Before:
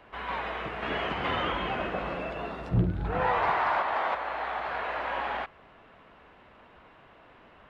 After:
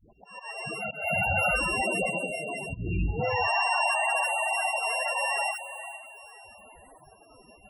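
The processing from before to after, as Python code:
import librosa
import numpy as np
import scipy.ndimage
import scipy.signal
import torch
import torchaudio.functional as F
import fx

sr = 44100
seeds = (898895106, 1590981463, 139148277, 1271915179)

p1 = np.r_[np.sort(x[:len(x) // 16 * 16].reshape(-1, 16), axis=1).ravel(), x[len(x) // 16 * 16:]]
p2 = fx.hum_notches(p1, sr, base_hz=60, count=9)
p3 = p2 + fx.echo_diffused(p2, sr, ms=475, feedback_pct=45, wet_db=-13.0, dry=0)
p4 = fx.clip_hard(p3, sr, threshold_db=-27.0, at=(2.83, 3.31), fade=0.02)
p5 = fx.dispersion(p4, sr, late='highs', ms=123.0, hz=480.0)
p6 = fx.comb(p5, sr, ms=1.4, depth=0.81, at=(0.79, 1.55), fade=0.02)
p7 = fx.level_steps(p6, sr, step_db=11)
p8 = p6 + (p7 * 10.0 ** (3.0 / 20.0))
p9 = fx.auto_swell(p8, sr, attack_ms=268.0)
y = fx.spec_topn(p9, sr, count=16)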